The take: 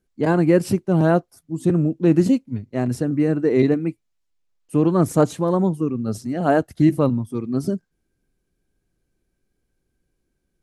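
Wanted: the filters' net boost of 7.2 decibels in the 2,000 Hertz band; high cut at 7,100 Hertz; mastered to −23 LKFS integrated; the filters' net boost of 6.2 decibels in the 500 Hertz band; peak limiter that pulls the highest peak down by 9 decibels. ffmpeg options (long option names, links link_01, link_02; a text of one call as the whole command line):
ffmpeg -i in.wav -af "lowpass=7100,equalizer=frequency=500:width_type=o:gain=7.5,equalizer=frequency=2000:width_type=o:gain=9,volume=-3.5dB,alimiter=limit=-11.5dB:level=0:latency=1" out.wav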